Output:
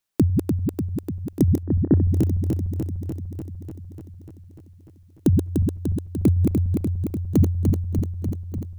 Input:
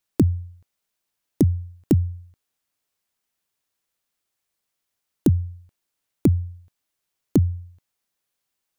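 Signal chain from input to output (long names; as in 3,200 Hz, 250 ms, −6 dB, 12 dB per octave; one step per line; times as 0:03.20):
feedback delay that plays each chunk backwards 148 ms, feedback 83%, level −3.5 dB
0:01.63–0:02.08: linear-phase brick-wall low-pass 1,900 Hz
level −1 dB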